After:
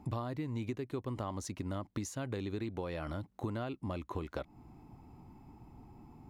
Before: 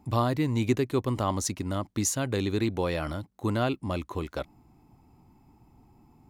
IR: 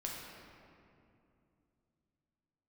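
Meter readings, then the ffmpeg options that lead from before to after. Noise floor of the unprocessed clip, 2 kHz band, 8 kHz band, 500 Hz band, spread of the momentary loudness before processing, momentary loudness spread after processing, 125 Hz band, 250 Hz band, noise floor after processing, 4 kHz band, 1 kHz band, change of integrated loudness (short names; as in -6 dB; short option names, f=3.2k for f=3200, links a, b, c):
-61 dBFS, -11.5 dB, -16.0 dB, -10.5 dB, 8 LU, 18 LU, -9.5 dB, -10.0 dB, -63 dBFS, -13.5 dB, -11.0 dB, -10.5 dB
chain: -af "acompressor=threshold=-38dB:ratio=12,highshelf=f=4.2k:g=-8.5,volume=3.5dB"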